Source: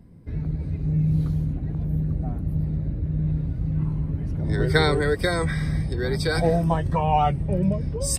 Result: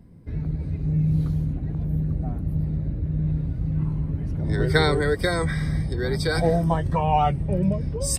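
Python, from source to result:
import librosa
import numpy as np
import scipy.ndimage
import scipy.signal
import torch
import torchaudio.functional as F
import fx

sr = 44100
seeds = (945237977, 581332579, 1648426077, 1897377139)

y = fx.notch(x, sr, hz=2600.0, q=7.6, at=(4.76, 6.84))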